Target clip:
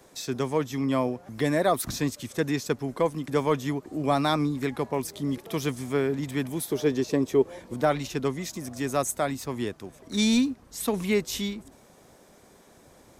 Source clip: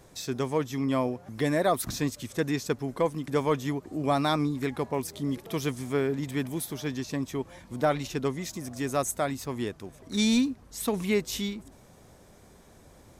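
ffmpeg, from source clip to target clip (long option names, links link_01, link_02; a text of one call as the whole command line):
ffmpeg -i in.wav -filter_complex "[0:a]asettb=1/sr,asplit=3[link_01][link_02][link_03];[link_01]atrim=end=6.714[link_04];[link_02]atrim=start=6.71:end=7.74,asetpts=PTS-STARTPTS,afade=type=in:duration=0.004:curve=qsin,afade=type=out:start_time=1.026:duration=0.004:curve=qsin,equalizer=frequency=430:width=1.5:gain=12.5[link_05];[link_03]atrim=start=7.736[link_06];[link_04][link_05]acrossfade=duration=0.004:curve1=hsin:curve2=qsin[link_07];[link_07][link_06]acrossfade=duration=0.004:curve1=qsin:curve2=hsin,acrossover=split=190|1700|5600[link_08][link_09][link_10][link_11];[link_08]aeval=exprs='sgn(val(0))*max(abs(val(0))-0.00112,0)':channel_layout=same[link_12];[link_12][link_09][link_10][link_11]amix=inputs=4:normalize=0,volume=1.5dB" out.wav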